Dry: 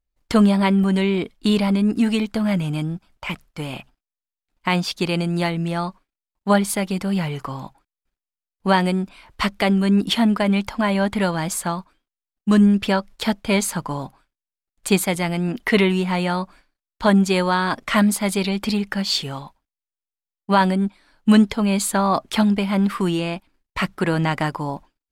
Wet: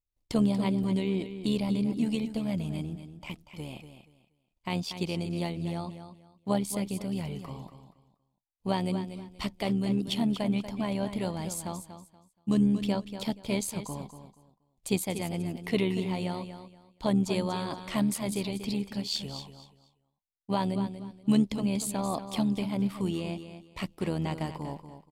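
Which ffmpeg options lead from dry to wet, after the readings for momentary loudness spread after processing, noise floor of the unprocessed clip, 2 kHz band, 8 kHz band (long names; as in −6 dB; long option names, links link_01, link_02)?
15 LU, below −85 dBFS, −17.0 dB, −9.5 dB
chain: -af "equalizer=frequency=1500:width=1.5:gain=-13.5,tremolo=f=77:d=0.519,aecho=1:1:238|476|714:0.299|0.0716|0.0172,volume=-7.5dB"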